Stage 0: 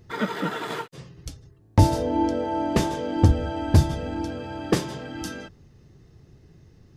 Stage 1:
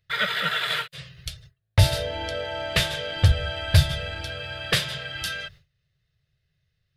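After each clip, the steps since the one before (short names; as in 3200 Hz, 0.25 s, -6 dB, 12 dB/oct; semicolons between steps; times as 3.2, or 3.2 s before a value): gate with hold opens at -40 dBFS; EQ curve 150 Hz 0 dB, 270 Hz -25 dB, 610 Hz +2 dB, 870 Hz -10 dB, 1500 Hz +8 dB, 3800 Hz +14 dB, 6200 Hz 0 dB, 10000 Hz +7 dB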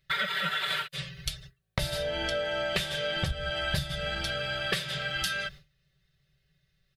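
comb 5.2 ms, depth 89%; compressor 12:1, threshold -28 dBFS, peak gain reduction 16 dB; gain +1.5 dB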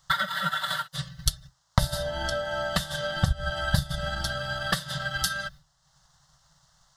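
band noise 490–6600 Hz -67 dBFS; transient shaper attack +6 dB, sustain -6 dB; fixed phaser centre 1000 Hz, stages 4; gain +5.5 dB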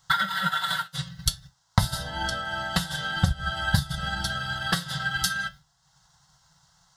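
notch comb 600 Hz; flange 0.51 Hz, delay 9.7 ms, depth 2 ms, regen +71%; gain +7 dB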